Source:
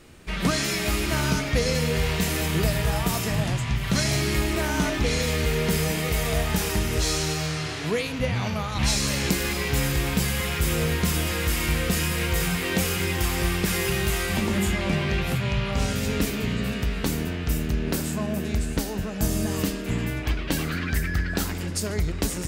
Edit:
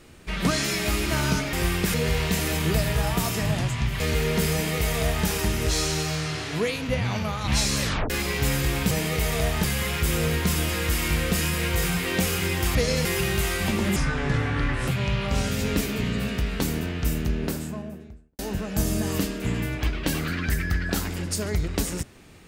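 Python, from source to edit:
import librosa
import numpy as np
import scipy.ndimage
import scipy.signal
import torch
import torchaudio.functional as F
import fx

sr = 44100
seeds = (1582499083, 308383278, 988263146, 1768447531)

y = fx.studio_fade_out(x, sr, start_s=17.61, length_s=1.22)
y = fx.edit(y, sr, fx.swap(start_s=1.53, length_s=0.3, other_s=13.33, other_length_s=0.41),
    fx.cut(start_s=3.89, length_s=1.42),
    fx.duplicate(start_s=5.84, length_s=0.73, to_s=10.22),
    fx.tape_stop(start_s=9.13, length_s=0.28),
    fx.speed_span(start_s=14.65, length_s=0.67, speed=0.73), tone=tone)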